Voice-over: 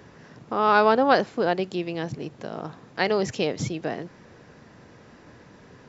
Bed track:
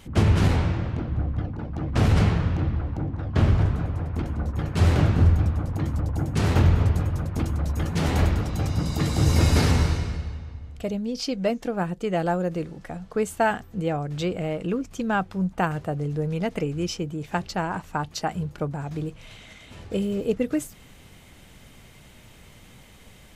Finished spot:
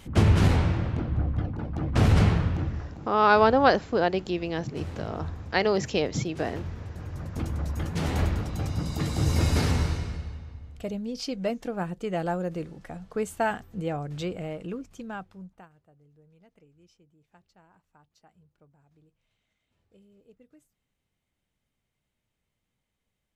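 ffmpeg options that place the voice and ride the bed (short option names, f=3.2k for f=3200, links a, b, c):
-filter_complex "[0:a]adelay=2550,volume=-0.5dB[a];[1:a]volume=13dB,afade=t=out:st=2.33:d=0.74:silence=0.133352,afade=t=in:st=6.93:d=0.54:silence=0.211349,afade=t=out:st=14.11:d=1.58:silence=0.0398107[b];[a][b]amix=inputs=2:normalize=0"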